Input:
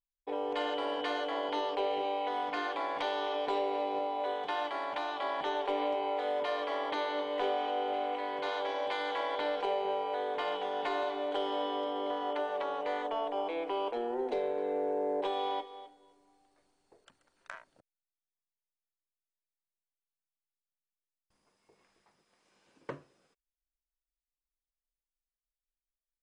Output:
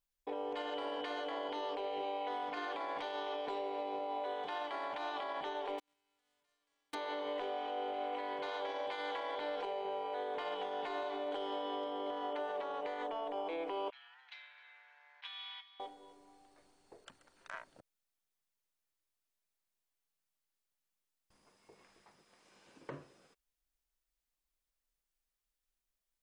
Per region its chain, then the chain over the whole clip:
0:05.78–0:06.93: spectral envelope flattened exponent 0.3 + noise gate −26 dBFS, range −54 dB
0:13.90–0:15.80: Bessel high-pass filter 2,500 Hz, order 6 + high-frequency loss of the air 230 metres
whole clip: downward compressor, threshold −40 dBFS; brickwall limiter −36 dBFS; level +5 dB

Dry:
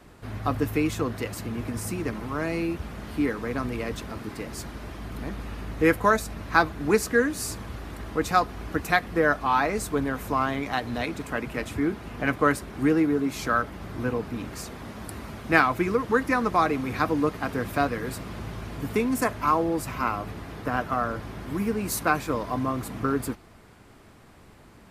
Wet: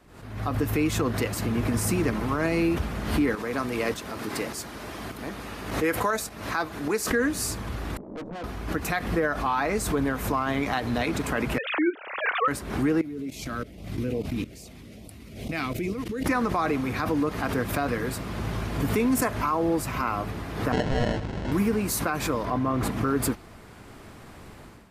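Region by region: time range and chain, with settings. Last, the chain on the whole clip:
0:03.35–0:07.11: high-pass filter 73 Hz + bass and treble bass −7 dB, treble +3 dB + shaped tremolo saw up 1.7 Hz, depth 55%
0:07.97–0:08.44: elliptic band-pass filter 160–610 Hz, stop band 50 dB + tube saturation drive 40 dB, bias 0.75
0:11.58–0:12.48: three sine waves on the formant tracks + spectral tilt +3.5 dB per octave
0:13.01–0:16.26: flat-topped bell 1,200 Hz −11 dB 1.3 octaves + output level in coarse steps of 17 dB + auto-filter notch saw up 2.4 Hz 360–1,800 Hz
0:20.72–0:21.52: sample-rate reduction 1,200 Hz + high-frequency loss of the air 120 metres
0:22.45–0:22.91: high-shelf EQ 5,000 Hz −11 dB + level that may fall only so fast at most 25 dB per second
whole clip: automatic gain control gain up to 12.5 dB; brickwall limiter −9.5 dBFS; background raised ahead of every attack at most 74 dB per second; level −6 dB

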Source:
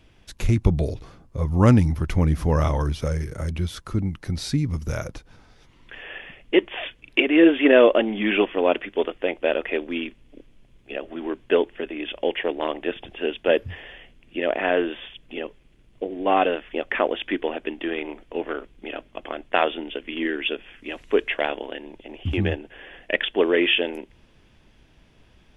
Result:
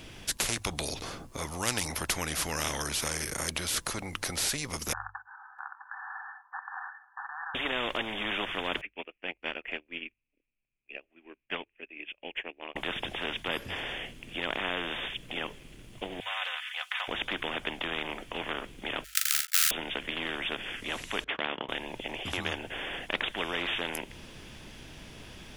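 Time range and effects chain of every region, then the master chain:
0:04.93–0:07.55: linear-phase brick-wall band-pass 750–1,800 Hz + single-tap delay 657 ms −8.5 dB
0:08.81–0:12.76: transistor ladder low-pass 2,600 Hz, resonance 80% + expander for the loud parts 2.5 to 1, over −47 dBFS
0:16.20–0:17.08: Bessel high-pass filter 1,800 Hz, order 8 + comb filter 4 ms, depth 81%
0:19.04–0:19.71: each half-wave held at its own peak + Chebyshev high-pass filter 1,300 Hz, order 10 + double-tracking delay 40 ms −5.5 dB
0:21.24–0:21.69: noise gate −34 dBFS, range −16 dB + band-pass filter 170–2,200 Hz
whole clip: high-shelf EQ 4,300 Hz +10 dB; mains-hum notches 50/100 Hz; every bin compressed towards the loudest bin 4 to 1; level −4.5 dB

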